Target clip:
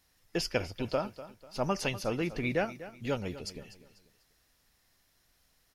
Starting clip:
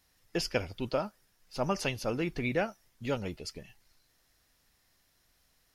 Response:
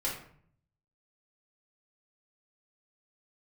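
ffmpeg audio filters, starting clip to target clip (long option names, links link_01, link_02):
-af "aecho=1:1:246|492|738:0.178|0.064|0.023"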